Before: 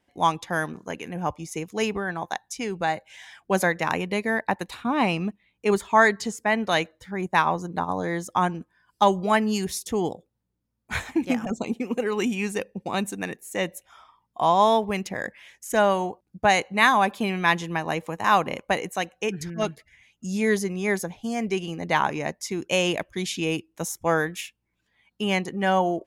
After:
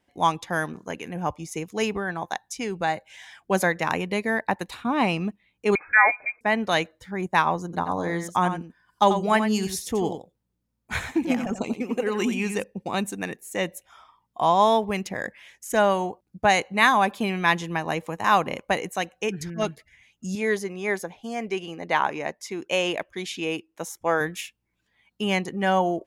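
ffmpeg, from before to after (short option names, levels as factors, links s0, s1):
-filter_complex "[0:a]asettb=1/sr,asplit=3[s0][s1][s2];[s0]atrim=end=5.754[s3];[s1]atrim=start=5.75:end=6.41,asetpts=PTS-STARTPTS,afade=t=in:d=0.004:c=qsin,afade=t=out:st=0.656:d=0.004:c=qsin,lowpass=f=2200:t=q:w=0.5098,lowpass=f=2200:t=q:w=0.6013,lowpass=f=2200:t=q:w=0.9,lowpass=f=2200:t=q:w=2.563,afreqshift=-2600[s4];[s2]atrim=start=6.406[s5];[s3][s4]acrossfade=d=0.004:c1=hsin:c2=qsin[s6];[s6][s5]acrossfade=d=0.004:c1=qsin:c2=hsin,asettb=1/sr,asplit=3[s7][s8][s9];[s7]atrim=end=7.644[s10];[s8]atrim=start=7.64:end=12.64,asetpts=PTS-STARTPTS,afade=t=in:d=0.004:c=qsin,afade=t=out:st=4.996:d=0.004:c=qsin,aecho=1:1:89:0.355,atrim=end_sample=220500[s11];[s9]atrim=start=12.636[s12];[s10][s11]acrossfade=d=0.004:c1=hsin:c2=qsin[s13];[s13][s12]acrossfade=d=0.004:c1=qsin:c2=hsin,asettb=1/sr,asplit=3[s14][s15][s16];[s14]atrim=end=20.354[s17];[s15]atrim=start=20.35:end=24.21,asetpts=PTS-STARTPTS,afade=t=in:d=0.004:c=qsin,afade=t=out:st=3.856:d=0.004:c=qsin,bass=f=250:g=-10,treble=f=4000:g=-6[s18];[s16]atrim=start=24.206[s19];[s17][s18]acrossfade=d=0.004:c1=hsin:c2=qsin[s20];[s20][s19]acrossfade=d=0.004:c1=qsin:c2=hsin"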